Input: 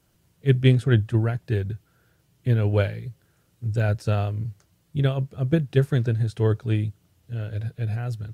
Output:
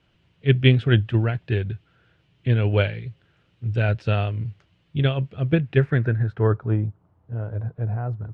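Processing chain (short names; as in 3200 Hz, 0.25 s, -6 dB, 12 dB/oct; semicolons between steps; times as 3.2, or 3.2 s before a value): low-pass sweep 2900 Hz -> 1000 Hz, 5.44–6.83; gain +1 dB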